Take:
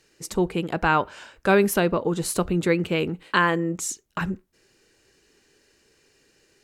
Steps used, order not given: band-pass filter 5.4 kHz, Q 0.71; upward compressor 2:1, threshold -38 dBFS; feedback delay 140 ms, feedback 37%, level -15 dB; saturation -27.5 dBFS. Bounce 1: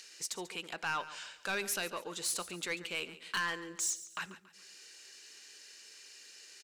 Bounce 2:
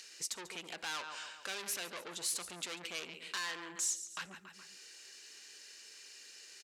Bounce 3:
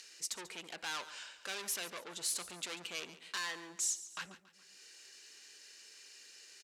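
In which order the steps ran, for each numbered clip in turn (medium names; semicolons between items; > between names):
band-pass filter > saturation > upward compressor > feedback delay; feedback delay > saturation > band-pass filter > upward compressor; saturation > feedback delay > upward compressor > band-pass filter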